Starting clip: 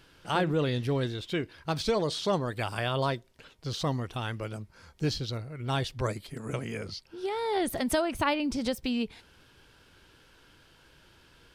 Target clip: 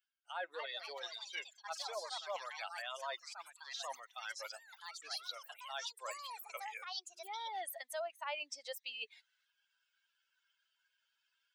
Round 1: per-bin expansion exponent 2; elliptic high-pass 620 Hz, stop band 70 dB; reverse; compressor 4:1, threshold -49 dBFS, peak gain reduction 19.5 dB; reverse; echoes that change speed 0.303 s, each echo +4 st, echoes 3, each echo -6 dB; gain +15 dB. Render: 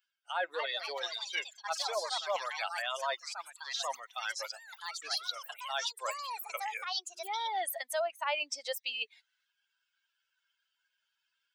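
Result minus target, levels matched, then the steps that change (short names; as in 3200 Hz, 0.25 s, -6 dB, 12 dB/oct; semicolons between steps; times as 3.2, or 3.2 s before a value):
compressor: peak gain reduction -8 dB
change: compressor 4:1, threshold -60 dBFS, peak gain reduction 27.5 dB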